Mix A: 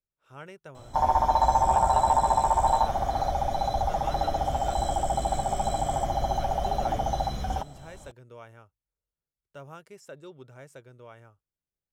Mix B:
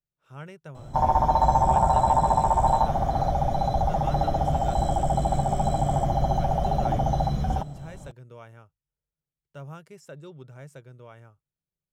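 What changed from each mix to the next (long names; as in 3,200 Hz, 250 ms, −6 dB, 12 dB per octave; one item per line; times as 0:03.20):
background: add tilt shelving filter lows +4 dB, about 1,100 Hz
master: add parametric band 150 Hz +9.5 dB 0.68 octaves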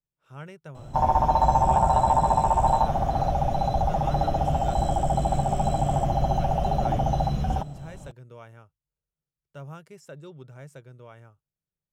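background: remove Butterworth band-reject 2,700 Hz, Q 5.9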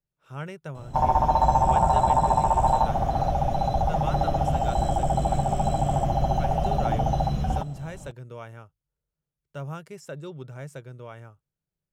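speech +5.5 dB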